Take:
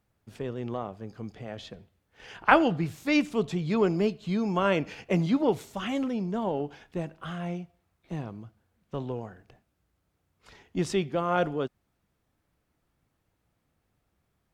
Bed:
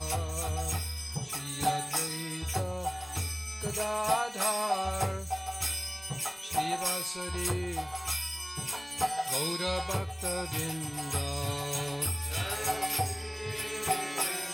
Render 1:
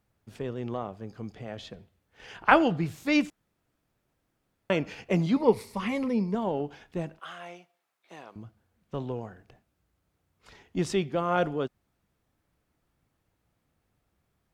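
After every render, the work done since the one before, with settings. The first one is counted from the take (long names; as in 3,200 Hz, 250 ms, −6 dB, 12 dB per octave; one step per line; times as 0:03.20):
0:03.30–0:04.70: fill with room tone
0:05.36–0:06.35: EQ curve with evenly spaced ripples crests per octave 0.9, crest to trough 11 dB
0:07.19–0:08.36: Bessel high-pass filter 760 Hz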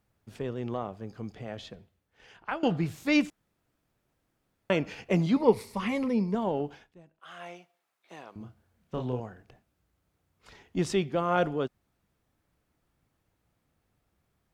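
0:01.51–0:02.63: fade out, to −20 dB
0:06.70–0:07.42: duck −21.5 dB, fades 0.25 s
0:08.37–0:09.20: double-tracking delay 32 ms −4.5 dB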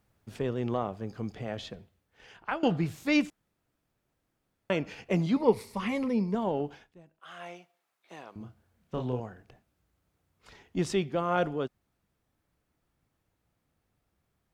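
speech leveller within 3 dB 2 s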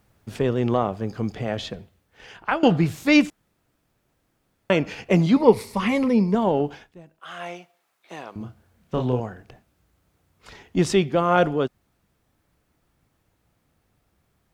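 level +9 dB
brickwall limiter −3 dBFS, peak gain reduction 0.5 dB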